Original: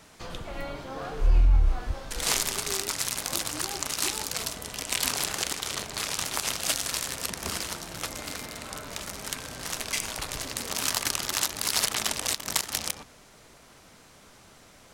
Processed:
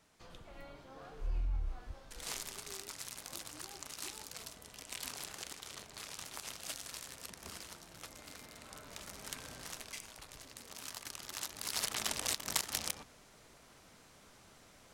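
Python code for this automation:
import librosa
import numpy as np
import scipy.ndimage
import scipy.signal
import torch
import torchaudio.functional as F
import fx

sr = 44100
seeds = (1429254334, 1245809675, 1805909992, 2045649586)

y = fx.gain(x, sr, db=fx.line((8.19, -16.0), (9.51, -9.5), (10.08, -18.5), (11.05, -18.5), (12.17, -7.0)))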